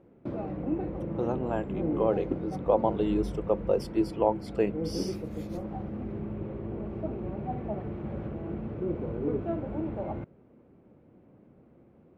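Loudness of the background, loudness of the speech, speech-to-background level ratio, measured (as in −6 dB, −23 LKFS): −35.0 LKFS, −30.0 LKFS, 5.0 dB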